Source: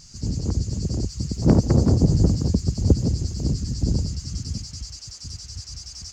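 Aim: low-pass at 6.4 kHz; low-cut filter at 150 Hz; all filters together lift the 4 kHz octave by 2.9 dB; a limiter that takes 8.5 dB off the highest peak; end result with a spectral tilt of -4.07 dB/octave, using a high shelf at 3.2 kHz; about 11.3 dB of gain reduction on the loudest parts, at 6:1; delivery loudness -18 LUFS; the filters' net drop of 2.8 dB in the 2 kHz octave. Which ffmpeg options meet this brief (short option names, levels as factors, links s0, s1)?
-af "highpass=150,lowpass=6400,equalizer=f=2000:t=o:g=-5.5,highshelf=f=3200:g=3,equalizer=f=4000:t=o:g=3.5,acompressor=threshold=0.0501:ratio=6,volume=5.96,alimiter=limit=0.447:level=0:latency=1"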